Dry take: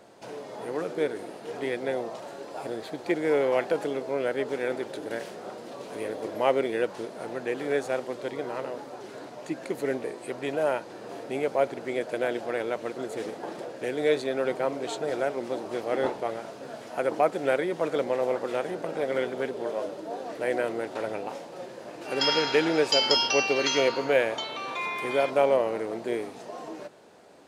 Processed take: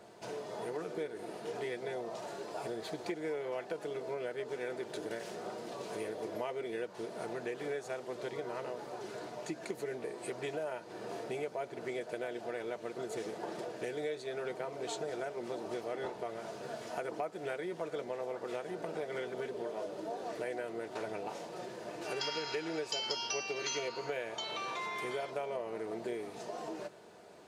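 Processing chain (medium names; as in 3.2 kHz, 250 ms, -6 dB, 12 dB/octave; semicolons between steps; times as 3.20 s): comb of notches 270 Hz; compression 5:1, threshold -35 dBFS, peak gain reduction 15.5 dB; dynamic bell 6.2 kHz, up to +5 dB, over -58 dBFS, Q 1.2; trim -1 dB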